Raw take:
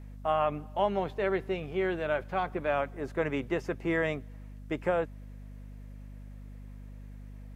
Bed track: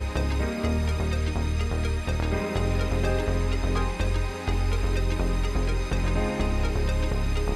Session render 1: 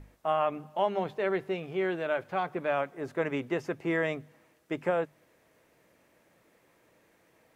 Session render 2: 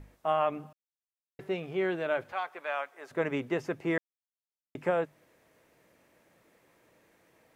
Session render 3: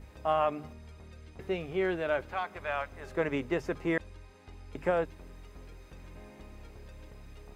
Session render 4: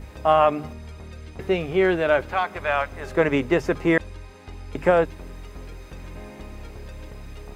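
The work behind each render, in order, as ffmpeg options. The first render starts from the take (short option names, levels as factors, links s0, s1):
-af "bandreject=f=50:t=h:w=6,bandreject=f=100:t=h:w=6,bandreject=f=150:t=h:w=6,bandreject=f=200:t=h:w=6,bandreject=f=250:t=h:w=6"
-filter_complex "[0:a]asettb=1/sr,asplit=3[s0][s1][s2];[s0]atrim=end=2.324[s3];[s1]atrim=start=2.32:end=3.11,asetpts=PTS-STARTPTS,afade=t=in:d=0.004:c=qsin,afade=t=out:st=0.786:d=0.004:c=qsin,highpass=840[s4];[s2]atrim=start=3.106[s5];[s3][s4]acrossfade=d=0.004:c1=hsin:c2=qsin[s6];[s6][s5]acrossfade=d=0.004:c1=qsin:c2=hsin,asplit=5[s7][s8][s9][s10][s11];[s7]atrim=end=0.73,asetpts=PTS-STARTPTS,afade=t=out:st=0.726:d=0.004:c=hsin[s12];[s8]atrim=start=0.73:end=1.39,asetpts=PTS-STARTPTS,volume=0[s13];[s9]atrim=start=1.39:end=3.98,asetpts=PTS-STARTPTS,afade=t=in:d=0.004:c=hsin,afade=t=out:st=2.586:d=0.004:c=hsin[s14];[s10]atrim=start=3.98:end=4.75,asetpts=PTS-STARTPTS,volume=0[s15];[s11]atrim=start=4.75,asetpts=PTS-STARTPTS,afade=t=in:d=0.004:c=hsin[s16];[s12][s13][s14][s15][s16]concat=n=5:v=0:a=1"
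-filter_complex "[1:a]volume=0.0631[s0];[0:a][s0]amix=inputs=2:normalize=0"
-af "volume=3.35"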